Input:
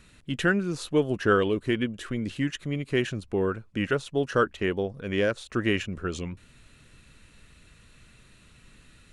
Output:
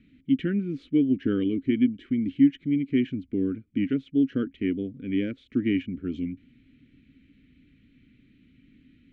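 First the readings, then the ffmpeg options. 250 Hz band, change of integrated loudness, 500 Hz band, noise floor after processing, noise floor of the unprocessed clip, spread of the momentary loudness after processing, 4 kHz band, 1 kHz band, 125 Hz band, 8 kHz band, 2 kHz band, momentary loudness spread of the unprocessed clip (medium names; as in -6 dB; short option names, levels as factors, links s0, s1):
+6.0 dB, +1.0 dB, -7.5 dB, -62 dBFS, -56 dBFS, 9 LU, -9.0 dB, under -20 dB, -3.0 dB, under -30 dB, -11.5 dB, 9 LU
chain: -filter_complex "[0:a]asplit=3[s0][s1][s2];[s0]bandpass=f=270:t=q:w=8,volume=1[s3];[s1]bandpass=f=2290:t=q:w=8,volume=0.501[s4];[s2]bandpass=f=3010:t=q:w=8,volume=0.355[s5];[s3][s4][s5]amix=inputs=3:normalize=0,aemphasis=mode=reproduction:type=riaa,volume=2.11"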